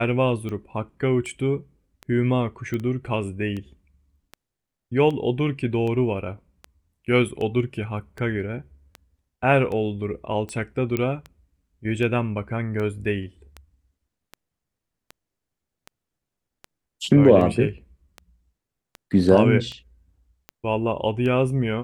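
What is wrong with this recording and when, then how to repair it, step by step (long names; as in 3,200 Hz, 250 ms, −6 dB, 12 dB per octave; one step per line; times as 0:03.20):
scratch tick 78 rpm −21 dBFS
0:02.74: click −17 dBFS
0:10.97: click −12 dBFS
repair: click removal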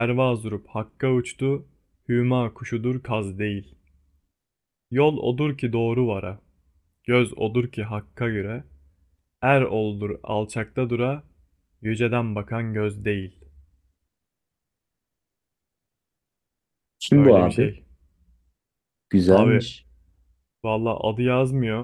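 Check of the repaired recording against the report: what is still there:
none of them is left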